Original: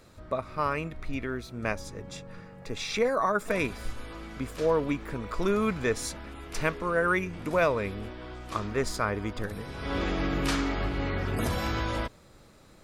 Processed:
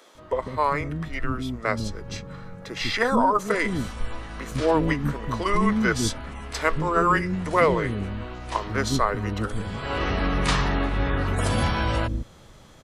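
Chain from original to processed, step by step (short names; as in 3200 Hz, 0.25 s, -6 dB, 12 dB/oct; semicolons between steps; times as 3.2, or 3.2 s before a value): formant shift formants -3 st; bands offset in time highs, lows 0.15 s, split 320 Hz; gain +6.5 dB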